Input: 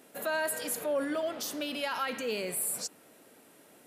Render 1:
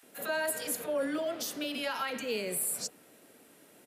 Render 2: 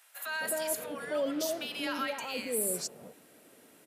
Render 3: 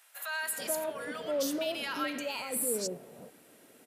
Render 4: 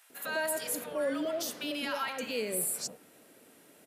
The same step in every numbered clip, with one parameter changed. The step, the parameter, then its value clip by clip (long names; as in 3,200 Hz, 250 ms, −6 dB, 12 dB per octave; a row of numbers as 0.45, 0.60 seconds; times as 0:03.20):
multiband delay without the direct sound, delay time: 30, 260, 430, 100 milliseconds